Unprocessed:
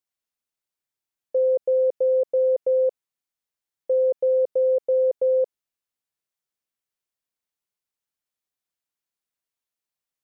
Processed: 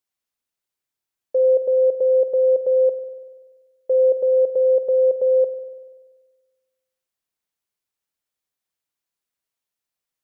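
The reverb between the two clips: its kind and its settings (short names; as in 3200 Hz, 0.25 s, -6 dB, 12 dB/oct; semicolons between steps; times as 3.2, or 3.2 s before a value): spring tank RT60 1.4 s, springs 48 ms, chirp 25 ms, DRR 11.5 dB; gain +2.5 dB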